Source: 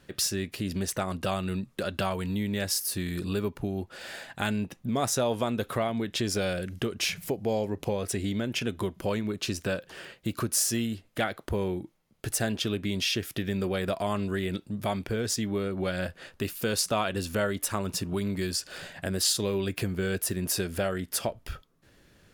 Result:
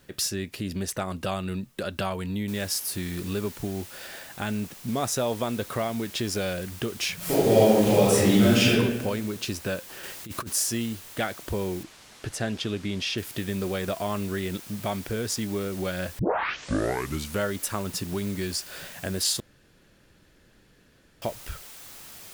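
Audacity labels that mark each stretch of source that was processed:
2.480000	2.480000	noise floor step -66 dB -45 dB
4.060000	4.880000	de-esser amount 75%
7.160000	8.690000	reverb throw, RT60 1.2 s, DRR -11 dB
10.030000	10.540000	negative-ratio compressor -33 dBFS, ratio -0.5
11.830000	13.180000	air absorption 62 m
16.190000	16.190000	tape start 1.23 s
19.400000	21.220000	room tone

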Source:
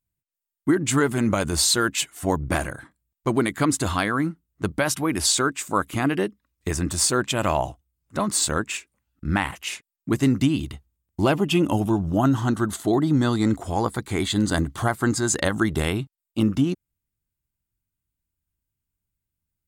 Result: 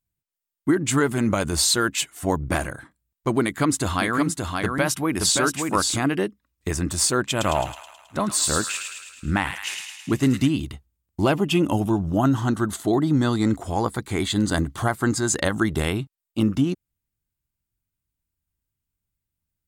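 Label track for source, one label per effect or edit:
3.430000	5.970000	echo 0.574 s -4 dB
7.300000	10.510000	thin delay 0.107 s, feedback 59%, high-pass 1800 Hz, level -4 dB

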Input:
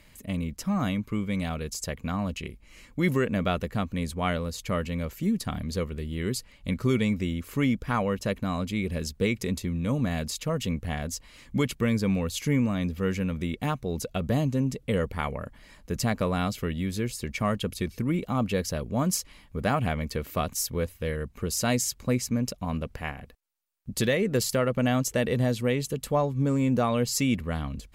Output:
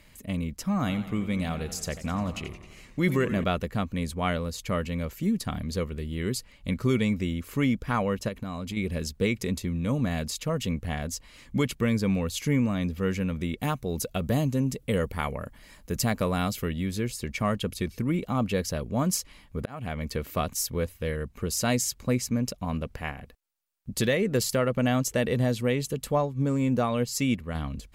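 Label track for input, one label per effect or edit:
0.760000	3.440000	warbling echo 88 ms, feedback 66%, depth 110 cents, level -13 dB
8.280000	8.770000	compressor, threshold -29 dBFS
13.580000	16.690000	high shelf 8800 Hz +9.5 dB
19.590000	20.050000	auto swell 0.446 s
26.180000	27.550000	upward expander, over -33 dBFS

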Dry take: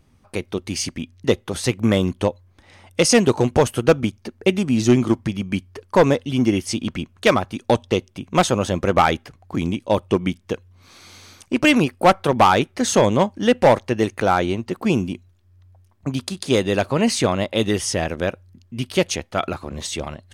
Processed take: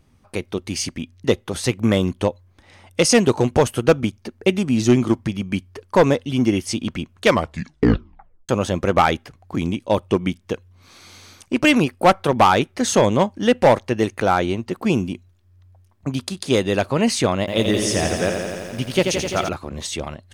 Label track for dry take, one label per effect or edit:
7.260000	7.260000	tape stop 1.23 s
17.390000	19.490000	lo-fi delay 85 ms, feedback 80%, word length 8-bit, level -5.5 dB

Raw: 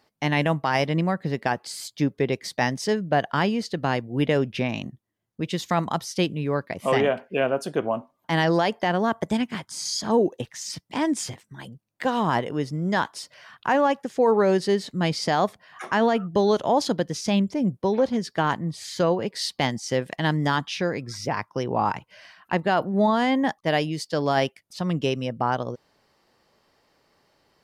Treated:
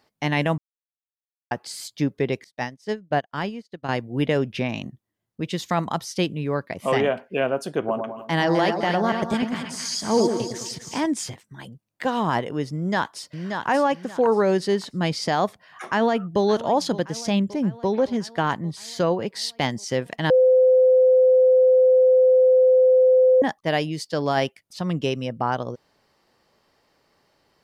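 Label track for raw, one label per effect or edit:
0.580000	1.510000	mute
2.440000	3.890000	upward expander 2.5:1, over -43 dBFS
7.780000	11.060000	split-band echo split 1300 Hz, lows 0.103 s, highs 0.257 s, level -5.5 dB
12.750000	13.680000	echo throw 0.58 s, feedback 25%, level -5.5 dB
15.850000	16.420000	echo throw 0.57 s, feedback 65%, level -16 dB
20.300000	23.420000	bleep 513 Hz -12 dBFS

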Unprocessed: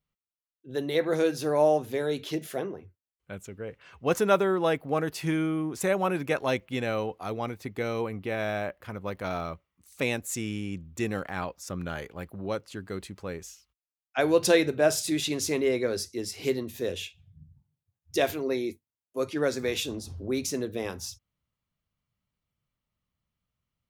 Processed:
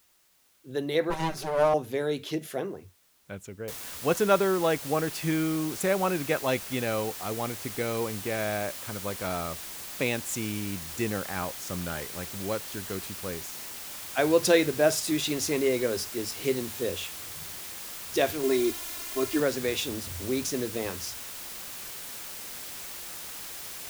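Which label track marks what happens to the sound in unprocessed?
1.100000	1.740000	minimum comb delay 5.2 ms
3.680000	3.680000	noise floor step -65 dB -40 dB
18.430000	19.400000	comb 2.9 ms, depth 93%

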